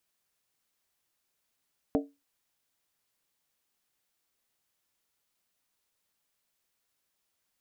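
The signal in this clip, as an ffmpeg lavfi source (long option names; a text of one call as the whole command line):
ffmpeg -f lavfi -i "aevalsrc='0.0891*pow(10,-3*t/0.24)*sin(2*PI*282*t)+0.0596*pow(10,-3*t/0.19)*sin(2*PI*449.5*t)+0.0398*pow(10,-3*t/0.164)*sin(2*PI*602.4*t)+0.0266*pow(10,-3*t/0.158)*sin(2*PI*647.5*t)+0.0178*pow(10,-3*t/0.147)*sin(2*PI*748.1*t)':duration=0.63:sample_rate=44100" out.wav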